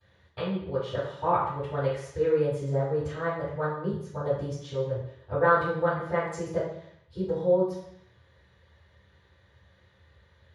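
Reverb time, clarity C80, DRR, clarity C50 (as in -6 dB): 0.70 s, 5.5 dB, -18.0 dB, 2.0 dB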